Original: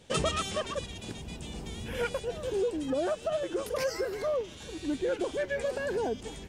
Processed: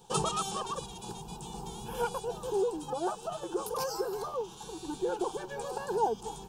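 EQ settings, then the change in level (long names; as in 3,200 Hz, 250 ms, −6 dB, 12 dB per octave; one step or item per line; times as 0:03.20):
parametric band 850 Hz +13 dB 0.5 octaves
high-shelf EQ 12,000 Hz +11.5 dB
phaser with its sweep stopped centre 400 Hz, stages 8
0.0 dB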